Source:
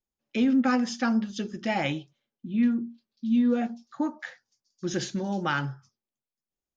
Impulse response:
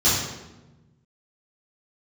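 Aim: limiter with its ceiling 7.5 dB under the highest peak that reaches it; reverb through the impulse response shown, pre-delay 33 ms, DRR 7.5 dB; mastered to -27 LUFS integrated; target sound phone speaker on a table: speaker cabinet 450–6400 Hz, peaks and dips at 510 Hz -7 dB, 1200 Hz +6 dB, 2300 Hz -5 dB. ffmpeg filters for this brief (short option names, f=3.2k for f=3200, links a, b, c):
-filter_complex "[0:a]alimiter=limit=-23dB:level=0:latency=1,asplit=2[a][b];[1:a]atrim=start_sample=2205,adelay=33[c];[b][c]afir=irnorm=-1:irlink=0,volume=-25dB[d];[a][d]amix=inputs=2:normalize=0,highpass=f=450:w=0.5412,highpass=f=450:w=1.3066,equalizer=f=510:t=q:w=4:g=-7,equalizer=f=1.2k:t=q:w=4:g=6,equalizer=f=2.3k:t=q:w=4:g=-5,lowpass=f=6.4k:w=0.5412,lowpass=f=6.4k:w=1.3066,volume=11dB"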